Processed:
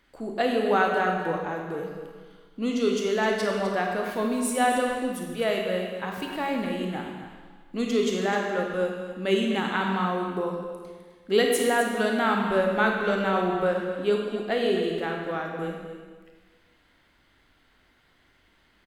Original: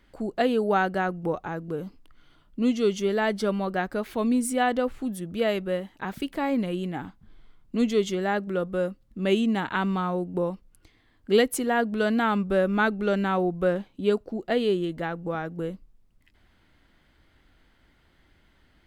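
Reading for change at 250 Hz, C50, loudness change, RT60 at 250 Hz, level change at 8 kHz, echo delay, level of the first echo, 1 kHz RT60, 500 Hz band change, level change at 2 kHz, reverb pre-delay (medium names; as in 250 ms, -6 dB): -2.0 dB, 1.5 dB, +0.5 dB, 1.5 s, +2.5 dB, 256 ms, -11.0 dB, 1.5 s, +0.5 dB, +2.5 dB, 25 ms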